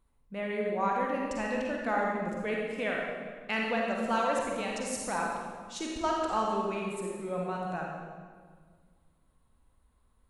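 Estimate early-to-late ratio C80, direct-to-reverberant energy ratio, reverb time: 1.5 dB, -2.0 dB, 1.8 s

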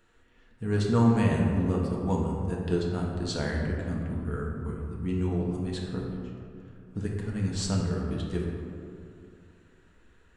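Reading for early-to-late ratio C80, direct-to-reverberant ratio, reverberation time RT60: 2.5 dB, -2.5 dB, 2.4 s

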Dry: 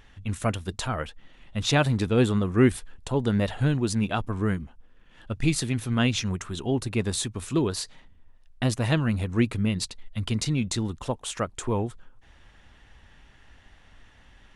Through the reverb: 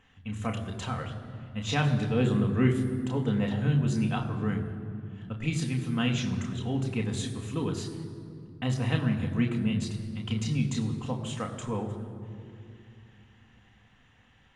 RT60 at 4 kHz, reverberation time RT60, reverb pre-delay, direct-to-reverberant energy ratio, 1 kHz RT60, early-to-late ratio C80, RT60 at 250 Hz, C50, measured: 1.5 s, 2.5 s, 3 ms, 1.5 dB, 2.3 s, 9.5 dB, 3.9 s, 9.0 dB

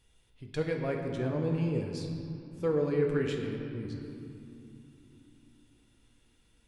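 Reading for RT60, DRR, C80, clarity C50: 3.0 s, 1.0 dB, 4.5 dB, 3.5 dB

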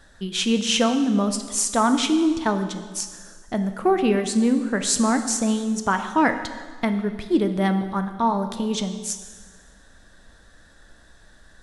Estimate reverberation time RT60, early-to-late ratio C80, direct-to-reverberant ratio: 1.6 s, 11.0 dB, 7.5 dB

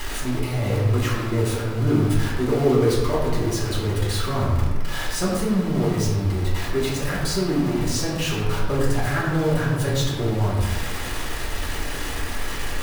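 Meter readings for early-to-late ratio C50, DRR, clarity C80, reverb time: 1.0 dB, -6.5 dB, 3.0 dB, 1.4 s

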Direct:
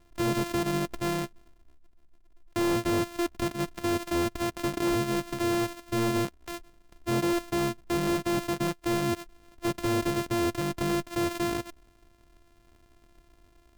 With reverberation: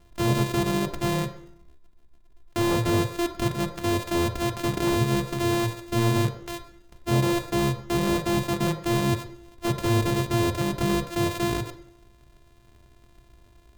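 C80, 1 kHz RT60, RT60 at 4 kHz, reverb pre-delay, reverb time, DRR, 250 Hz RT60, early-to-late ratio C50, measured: 12.0 dB, 0.70 s, 0.70 s, 3 ms, 0.70 s, 5.0 dB, 0.70 s, 10.0 dB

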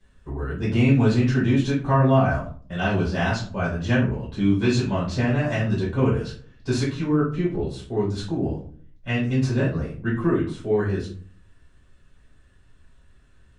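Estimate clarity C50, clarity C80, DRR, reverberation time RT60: 6.5 dB, 11.5 dB, -9.0 dB, 0.45 s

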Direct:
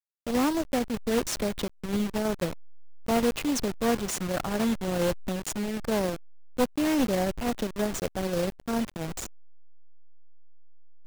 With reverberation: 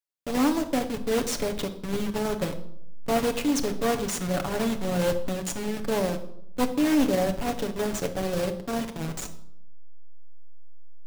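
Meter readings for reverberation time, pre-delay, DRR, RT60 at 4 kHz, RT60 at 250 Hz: 0.70 s, 7 ms, 5.0 dB, 0.55 s, 0.95 s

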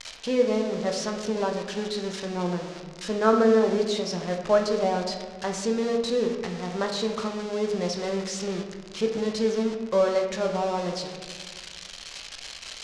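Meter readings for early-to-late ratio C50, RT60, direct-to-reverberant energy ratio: 5.5 dB, 1.6 s, 2.5 dB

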